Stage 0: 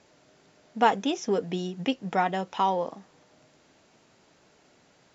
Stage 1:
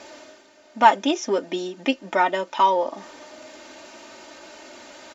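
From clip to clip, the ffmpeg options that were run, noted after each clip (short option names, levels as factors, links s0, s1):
-af "bass=f=250:g=-12,treble=f=4000:g=-1,aecho=1:1:3.3:0.89,areverse,acompressor=mode=upward:threshold=0.0158:ratio=2.5,areverse,volume=1.68"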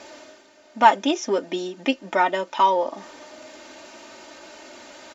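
-af anull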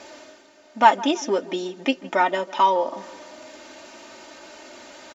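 -filter_complex "[0:a]asplit=2[s0][s1];[s1]adelay=161,lowpass=f=1900:p=1,volume=0.119,asplit=2[s2][s3];[s3]adelay=161,lowpass=f=1900:p=1,volume=0.54,asplit=2[s4][s5];[s5]adelay=161,lowpass=f=1900:p=1,volume=0.54,asplit=2[s6][s7];[s7]adelay=161,lowpass=f=1900:p=1,volume=0.54,asplit=2[s8][s9];[s9]adelay=161,lowpass=f=1900:p=1,volume=0.54[s10];[s0][s2][s4][s6][s8][s10]amix=inputs=6:normalize=0"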